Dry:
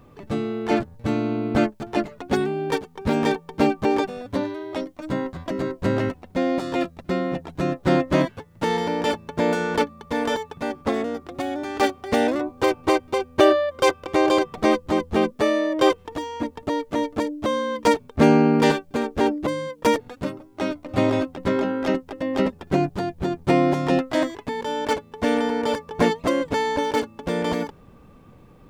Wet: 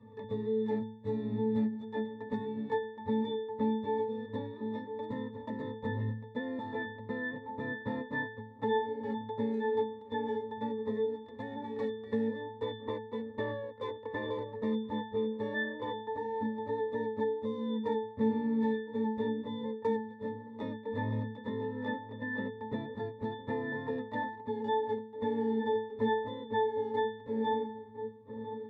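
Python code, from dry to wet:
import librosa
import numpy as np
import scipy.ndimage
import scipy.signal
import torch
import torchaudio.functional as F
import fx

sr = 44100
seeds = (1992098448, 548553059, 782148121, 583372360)

p1 = fx.pitch_ramps(x, sr, semitones=-1.0, every_ms=457)
p2 = fx.peak_eq(p1, sr, hz=7900.0, db=5.5, octaves=0.27)
p3 = p2 + fx.echo_banded(p2, sr, ms=1003, feedback_pct=47, hz=350.0, wet_db=-16.5, dry=0)
p4 = fx.leveller(p3, sr, passes=2)
p5 = fx.low_shelf(p4, sr, hz=150.0, db=-10.5)
p6 = fx.octave_resonator(p5, sr, note='A', decay_s=0.49)
y = fx.band_squash(p6, sr, depth_pct=70)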